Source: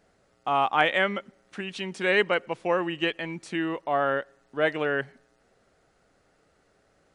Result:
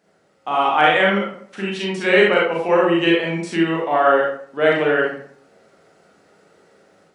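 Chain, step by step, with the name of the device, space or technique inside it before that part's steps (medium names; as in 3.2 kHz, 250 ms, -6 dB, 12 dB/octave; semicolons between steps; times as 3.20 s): far laptop microphone (reverberation RT60 0.55 s, pre-delay 31 ms, DRR -3.5 dB; high-pass 180 Hz 12 dB/octave; level rider gain up to 6 dB)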